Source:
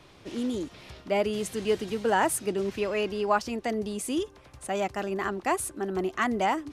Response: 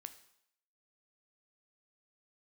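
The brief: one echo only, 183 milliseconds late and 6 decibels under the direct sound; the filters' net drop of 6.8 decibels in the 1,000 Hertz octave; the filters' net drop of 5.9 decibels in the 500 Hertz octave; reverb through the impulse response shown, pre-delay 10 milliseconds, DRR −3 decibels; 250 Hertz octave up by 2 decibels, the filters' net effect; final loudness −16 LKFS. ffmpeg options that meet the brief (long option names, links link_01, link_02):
-filter_complex "[0:a]equalizer=frequency=250:width_type=o:gain=5,equalizer=frequency=500:width_type=o:gain=-8.5,equalizer=frequency=1000:width_type=o:gain=-6,aecho=1:1:183:0.501,asplit=2[link_01][link_02];[1:a]atrim=start_sample=2205,adelay=10[link_03];[link_02][link_03]afir=irnorm=-1:irlink=0,volume=8.5dB[link_04];[link_01][link_04]amix=inputs=2:normalize=0,volume=9.5dB"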